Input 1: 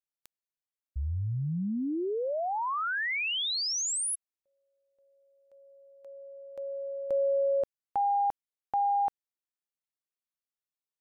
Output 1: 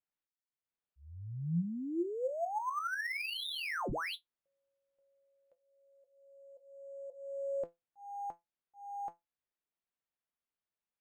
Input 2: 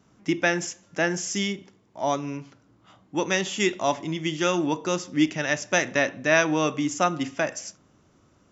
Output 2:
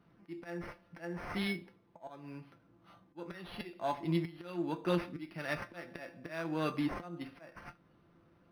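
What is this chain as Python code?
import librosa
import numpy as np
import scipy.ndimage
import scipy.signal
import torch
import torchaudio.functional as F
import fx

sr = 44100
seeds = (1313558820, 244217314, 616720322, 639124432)

y = fx.auto_swell(x, sr, attack_ms=526.0)
y = fx.comb_fb(y, sr, f0_hz=170.0, decay_s=0.17, harmonics='all', damping=0.1, mix_pct=80)
y = np.interp(np.arange(len(y)), np.arange(len(y))[::6], y[::6])
y = y * librosa.db_to_amplitude(2.5)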